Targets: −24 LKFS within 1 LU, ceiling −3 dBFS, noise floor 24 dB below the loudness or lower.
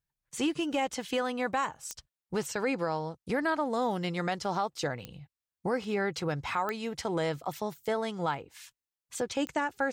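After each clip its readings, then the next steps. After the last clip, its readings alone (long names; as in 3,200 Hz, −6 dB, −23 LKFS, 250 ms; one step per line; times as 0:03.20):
number of clicks 4; integrated loudness −32.5 LKFS; sample peak −18.5 dBFS; target loudness −24.0 LKFS
→ click removal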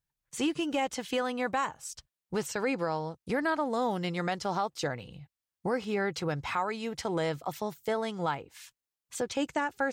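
number of clicks 0; integrated loudness −32.5 LKFS; sample peak −18.5 dBFS; target loudness −24.0 LKFS
→ level +8.5 dB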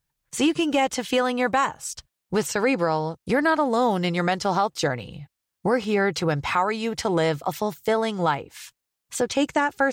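integrated loudness −24.0 LKFS; sample peak −10.0 dBFS; background noise floor −83 dBFS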